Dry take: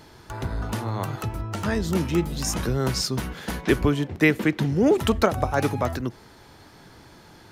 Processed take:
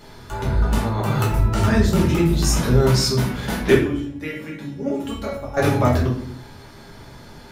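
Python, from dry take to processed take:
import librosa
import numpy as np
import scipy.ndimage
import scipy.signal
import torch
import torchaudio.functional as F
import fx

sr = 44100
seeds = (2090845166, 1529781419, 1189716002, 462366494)

y = fx.over_compress(x, sr, threshold_db=-30.0, ratio=-0.5, at=(0.88, 1.63), fade=0.02)
y = fx.comb_fb(y, sr, f0_hz=280.0, decay_s=0.34, harmonics='all', damping=0.0, mix_pct=90, at=(3.74, 5.57))
y = fx.room_shoebox(y, sr, seeds[0], volume_m3=78.0, walls='mixed', distance_m=1.3)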